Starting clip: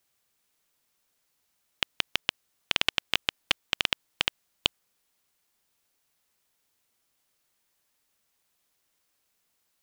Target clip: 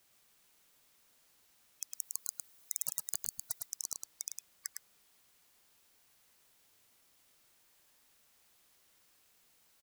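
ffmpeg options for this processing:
ffmpeg -i in.wav -filter_complex "[0:a]asettb=1/sr,asplit=3[link_01][link_02][link_03];[link_01]atrim=end=1.954[link_04];[link_02]atrim=start=1.95:end=3.66,asetpts=PTS-STARTPTS,afade=type=in:duration=0.004:curve=qsin,afade=type=out:start_time=1.706:duration=0.004:curve=qsin,highshelf=frequency=9400:gain=8.5[link_05];[link_03]atrim=start=3.656[link_06];[link_04][link_05]acrossfade=duration=0.004:curve1=hsin:curve2=qsin[link_07];[link_07][link_06]acrossfade=duration=0.004:curve1=qsin:curve2=hsin,afftfilt=real='re*lt(hypot(re,im),0.0224)':imag='im*lt(hypot(re,im),0.0224)':win_size=1024:overlap=0.75,aecho=1:1:107:0.596,volume=5dB" out.wav

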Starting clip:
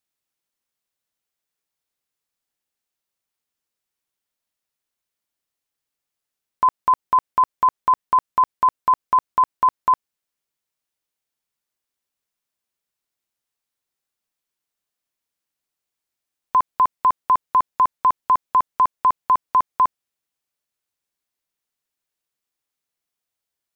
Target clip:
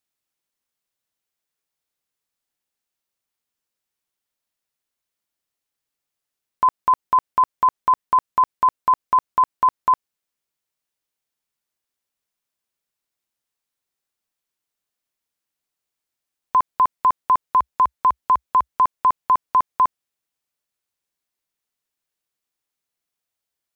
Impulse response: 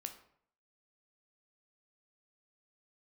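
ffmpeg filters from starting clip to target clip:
-filter_complex "[0:a]asettb=1/sr,asplit=3[link_01][link_02][link_03];[link_01]atrim=end=17.444[link_04];[link_02]atrim=start=17.44:end=18.74,asetpts=PTS-STARTPTS,afade=type=in:duration=0.004:curve=qsin,afade=type=out:start_time=1.296:duration=0.004:curve=qsin,equalizer=frequency=64:width_type=o:width=0.25:gain=-11[link_05];[link_03]atrim=start=18.736[link_06];[link_04][link_05]acrossfade=duration=0.004:curve1=hsin:curve2=qsin[link_07];[link_07][link_06]acrossfade=duration=0.004:curve1=qsin:curve2=hsin"

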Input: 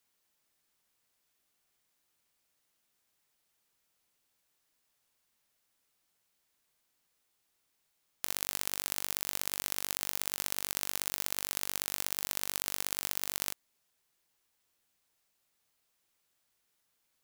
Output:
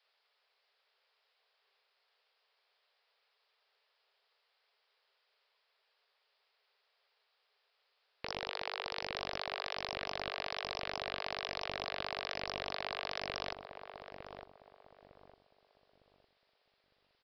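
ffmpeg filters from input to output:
ffmpeg -i in.wav -filter_complex "[0:a]afreqshift=390,acrossover=split=3800[link_01][link_02];[link_02]acompressor=threshold=-39dB:ratio=4:attack=1:release=60[link_03];[link_01][link_03]amix=inputs=2:normalize=0,aresample=11025,aeval=exprs='(mod(29.9*val(0)+1,2)-1)/29.9':channel_layout=same,aresample=44100,asplit=2[link_04][link_05];[link_05]adelay=906,lowpass=frequency=860:poles=1,volume=-5dB,asplit=2[link_06][link_07];[link_07]adelay=906,lowpass=frequency=860:poles=1,volume=0.38,asplit=2[link_08][link_09];[link_09]adelay=906,lowpass=frequency=860:poles=1,volume=0.38,asplit=2[link_10][link_11];[link_11]adelay=906,lowpass=frequency=860:poles=1,volume=0.38,asplit=2[link_12][link_13];[link_13]adelay=906,lowpass=frequency=860:poles=1,volume=0.38[link_14];[link_04][link_06][link_08][link_10][link_12][link_14]amix=inputs=6:normalize=0,volume=6dB" out.wav

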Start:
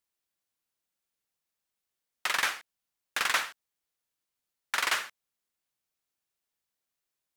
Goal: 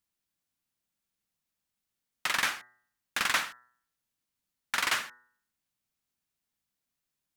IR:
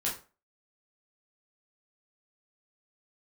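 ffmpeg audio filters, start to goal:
-af "lowshelf=frequency=310:width_type=q:width=1.5:gain=6,bandreject=frequency=122.5:width_type=h:width=4,bandreject=frequency=245:width_type=h:width=4,bandreject=frequency=367.5:width_type=h:width=4,bandreject=frequency=490:width_type=h:width=4,bandreject=frequency=612.5:width_type=h:width=4,bandreject=frequency=735:width_type=h:width=4,bandreject=frequency=857.5:width_type=h:width=4,bandreject=frequency=980:width_type=h:width=4,bandreject=frequency=1102.5:width_type=h:width=4,bandreject=frequency=1225:width_type=h:width=4,bandreject=frequency=1347.5:width_type=h:width=4,bandreject=frequency=1470:width_type=h:width=4,bandreject=frequency=1592.5:width_type=h:width=4,bandreject=frequency=1715:width_type=h:width=4,bandreject=frequency=1837.5:width_type=h:width=4,bandreject=frequency=1960:width_type=h:width=4"

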